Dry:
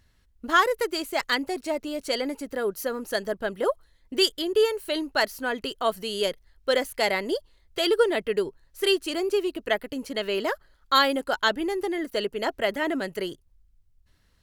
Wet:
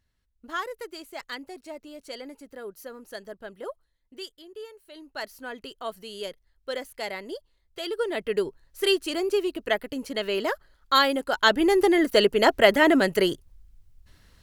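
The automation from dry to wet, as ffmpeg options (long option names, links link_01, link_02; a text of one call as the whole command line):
ffmpeg -i in.wav -af "volume=16.5dB,afade=type=out:start_time=3.66:duration=0.68:silence=0.398107,afade=type=in:start_time=4.92:duration=0.42:silence=0.298538,afade=type=in:start_time=7.96:duration=0.41:silence=0.354813,afade=type=in:start_time=11.33:duration=0.44:silence=0.375837" out.wav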